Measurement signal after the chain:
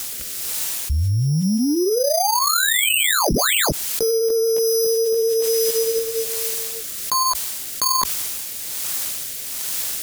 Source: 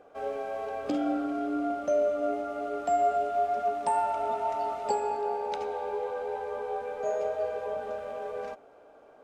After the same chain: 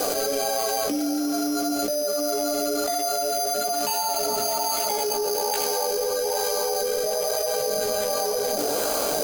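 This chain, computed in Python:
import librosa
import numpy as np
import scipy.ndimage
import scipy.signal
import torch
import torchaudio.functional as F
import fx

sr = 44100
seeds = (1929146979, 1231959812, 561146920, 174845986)

p1 = fx.chorus_voices(x, sr, voices=6, hz=0.99, base_ms=17, depth_ms=3.5, mix_pct=45)
p2 = 10.0 ** (-33.0 / 20.0) * np.tanh(p1 / 10.0 ** (-33.0 / 20.0))
p3 = p1 + F.gain(torch.from_numpy(p2), -12.0).numpy()
p4 = fx.peak_eq(p3, sr, hz=66.0, db=-8.0, octaves=0.66)
p5 = np.repeat(p4[::8], 8)[:len(p4)]
p6 = fx.quant_dither(p5, sr, seeds[0], bits=12, dither='triangular')
p7 = fx.rotary(p6, sr, hz=1.2)
p8 = fx.high_shelf(p7, sr, hz=3600.0, db=12.0)
p9 = fx.env_flatten(p8, sr, amount_pct=100)
y = F.gain(torch.from_numpy(p9), -1.0).numpy()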